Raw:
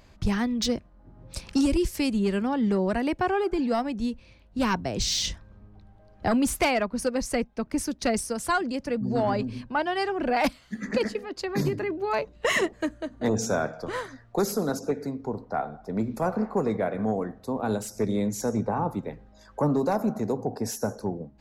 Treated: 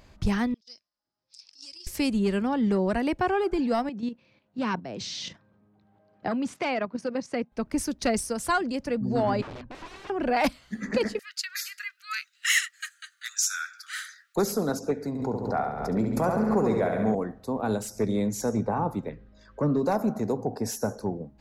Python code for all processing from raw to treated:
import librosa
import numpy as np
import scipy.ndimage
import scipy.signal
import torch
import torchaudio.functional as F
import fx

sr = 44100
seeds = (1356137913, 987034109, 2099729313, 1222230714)

y = fx.chain(x, sr, fx.bandpass_q(hz=5100.0, q=8.2),
    fx.over_compress(threshold_db=-47.0, ratio=-0.5), at=(0.54, 1.87))
y = fx.chain(y, sr, fx.highpass(hz=130.0, slope=24),
    fx.air_absorb(metres=110.0),
    fx.level_steps(step_db=9), at=(3.89, 7.52))
y = fx.chain(y, sr, fx.overflow_wrap(gain_db=32.0),
    fx.spacing_loss(db_at_10k=28), at=(9.42, 10.1))
y = fx.chain(y, sr, fx.steep_highpass(hz=1300.0, slope=96),
    fx.high_shelf(hz=4100.0, db=11.5), at=(11.19, 14.36))
y = fx.chain(y, sr, fx.highpass(hz=43.0, slope=12),
    fx.room_flutter(wall_m=11.9, rt60_s=0.89),
    fx.pre_swell(db_per_s=47.0), at=(15.08, 17.15))
y = fx.chain(y, sr, fx.lowpass(hz=4400.0, slope=12),
    fx.peak_eq(hz=810.0, db=-14.0, octaves=0.45), at=(19.09, 19.85))